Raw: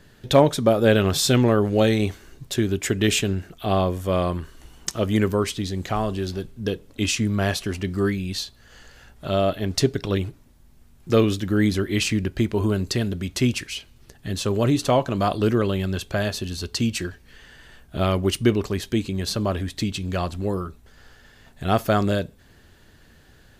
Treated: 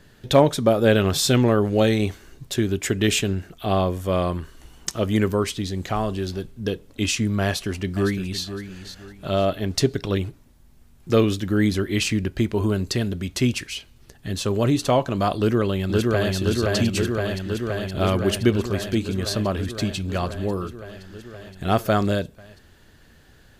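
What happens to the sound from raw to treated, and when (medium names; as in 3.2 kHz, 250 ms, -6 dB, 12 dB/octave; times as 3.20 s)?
7.45–8.43 s: echo throw 510 ms, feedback 30%, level -10.5 dB
15.37–16.34 s: echo throw 520 ms, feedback 80%, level -1.5 dB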